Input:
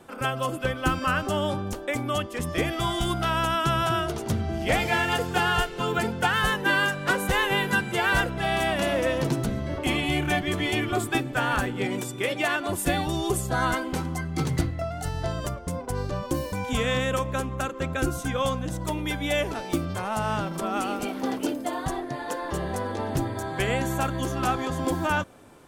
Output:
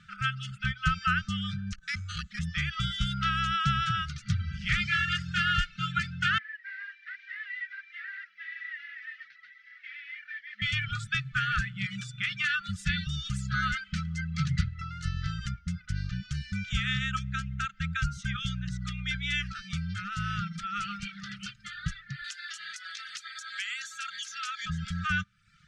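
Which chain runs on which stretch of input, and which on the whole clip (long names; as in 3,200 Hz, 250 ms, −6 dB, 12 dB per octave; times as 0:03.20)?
0:01.73–0:02.39: frequency shifter −30 Hz + bad sample-rate conversion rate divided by 6×, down none, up hold + saturating transformer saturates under 440 Hz
0:06.38–0:10.62: linear delta modulator 32 kbit/s, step −37 dBFS + flanger 1.1 Hz, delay 1.9 ms, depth 5.7 ms, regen −51% + four-pole ladder band-pass 2,000 Hz, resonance 80%
0:22.24–0:24.66: high-pass filter 810 Hz + spectral tilt +4.5 dB per octave + downward compressor 2.5 to 1, threshold −32 dBFS
whole clip: brick-wall band-stop 210–1,200 Hz; reverb reduction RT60 0.66 s; low-pass filter 5,800 Hz 24 dB per octave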